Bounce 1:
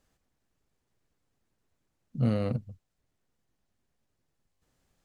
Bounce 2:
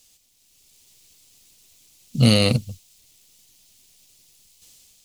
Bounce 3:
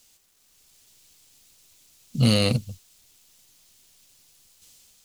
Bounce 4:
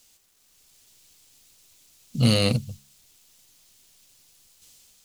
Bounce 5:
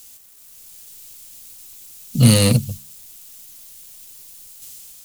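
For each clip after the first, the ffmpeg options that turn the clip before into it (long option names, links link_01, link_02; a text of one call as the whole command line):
ffmpeg -i in.wav -af "dynaudnorm=framelen=160:gausssize=7:maxgain=9dB,aexciter=amount=8.7:drive=6.3:freq=2400,volume=1.5dB" out.wav
ffmpeg -i in.wav -af "asoftclip=type=tanh:threshold=-5.5dB,acrusher=bits=9:mix=0:aa=0.000001,volume=-2.5dB" out.wav
ffmpeg -i in.wav -af "bandreject=frequency=69.26:width_type=h:width=4,bandreject=frequency=138.52:width_type=h:width=4,bandreject=frequency=207.78:width_type=h:width=4" out.wav
ffmpeg -i in.wav -filter_complex "[0:a]acrossover=split=220|6800[link_01][link_02][link_03];[link_02]asoftclip=type=tanh:threshold=-23.5dB[link_04];[link_03]crystalizer=i=1.5:c=0[link_05];[link_01][link_04][link_05]amix=inputs=3:normalize=0,volume=8.5dB" out.wav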